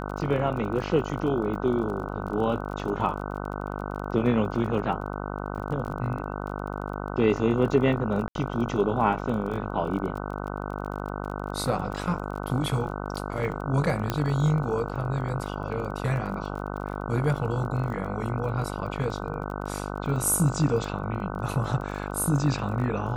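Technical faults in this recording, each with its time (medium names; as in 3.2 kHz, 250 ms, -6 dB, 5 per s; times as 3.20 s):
buzz 50 Hz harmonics 30 -33 dBFS
crackle 30 per s -35 dBFS
8.28–8.35 s: dropout 72 ms
14.10 s: pop -11 dBFS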